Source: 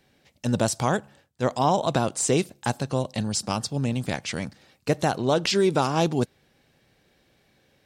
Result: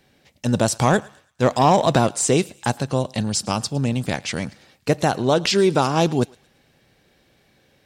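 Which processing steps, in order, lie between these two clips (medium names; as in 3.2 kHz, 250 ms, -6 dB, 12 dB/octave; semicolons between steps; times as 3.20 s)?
0.79–2.07 s: waveshaping leveller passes 1; on a send: thinning echo 111 ms, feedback 41%, high-pass 1 kHz, level -21 dB; on the sum: trim +4 dB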